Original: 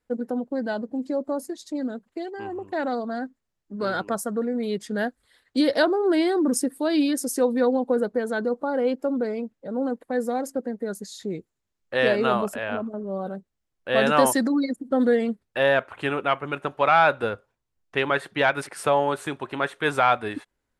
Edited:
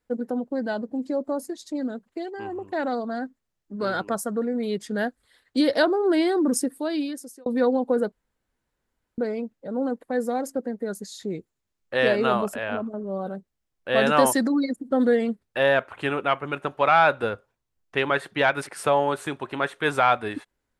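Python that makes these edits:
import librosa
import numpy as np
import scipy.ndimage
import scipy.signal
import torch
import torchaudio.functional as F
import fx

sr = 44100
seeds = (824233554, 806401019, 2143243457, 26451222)

y = fx.edit(x, sr, fx.fade_out_span(start_s=6.57, length_s=0.89),
    fx.room_tone_fill(start_s=8.12, length_s=1.06), tone=tone)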